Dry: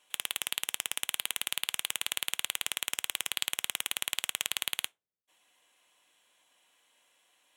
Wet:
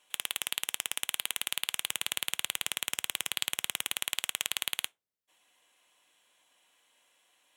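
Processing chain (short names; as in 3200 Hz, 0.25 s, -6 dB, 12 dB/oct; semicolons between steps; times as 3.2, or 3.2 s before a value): 1.81–3.96 low shelf 190 Hz +8 dB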